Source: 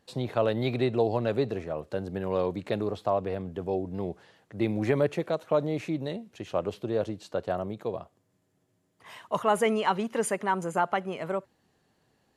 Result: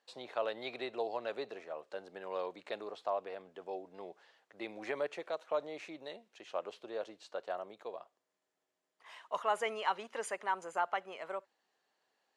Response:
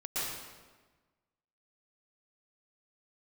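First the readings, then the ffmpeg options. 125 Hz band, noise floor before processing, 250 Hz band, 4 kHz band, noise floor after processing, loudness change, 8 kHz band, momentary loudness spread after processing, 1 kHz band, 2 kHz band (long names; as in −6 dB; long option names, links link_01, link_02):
−31.5 dB, −72 dBFS, −19.5 dB, −6.0 dB, below −85 dBFS, −10.0 dB, −11.0 dB, 12 LU, −7.0 dB, −6.0 dB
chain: -af "highpass=610,lowpass=7300,volume=-6dB"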